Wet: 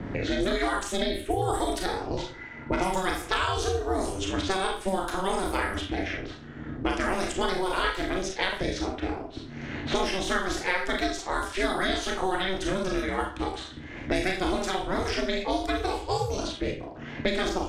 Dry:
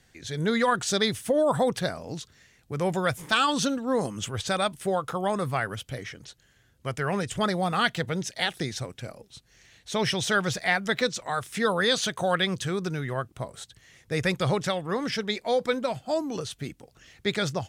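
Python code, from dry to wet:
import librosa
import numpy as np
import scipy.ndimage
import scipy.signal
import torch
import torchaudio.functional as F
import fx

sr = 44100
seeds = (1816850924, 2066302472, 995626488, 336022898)

y = fx.env_phaser(x, sr, low_hz=570.0, high_hz=1400.0, full_db=-20.0, at=(0.83, 1.42))
y = fx.rev_schroeder(y, sr, rt60_s=0.36, comb_ms=26, drr_db=-0.5)
y = fx.env_lowpass(y, sr, base_hz=1100.0, full_db=-21.5)
y = fx.low_shelf(y, sr, hz=110.0, db=6.5)
y = y * np.sin(2.0 * np.pi * 190.0 * np.arange(len(y)) / sr)
y = fx.small_body(y, sr, hz=(920.0, 1400.0, 2000.0), ring_ms=45, db=fx.line((2.17, 16.0), (3.01, 13.0)), at=(2.17, 3.01), fade=0.02)
y = fx.band_squash(y, sr, depth_pct=100)
y = y * 10.0 ** (-2.0 / 20.0)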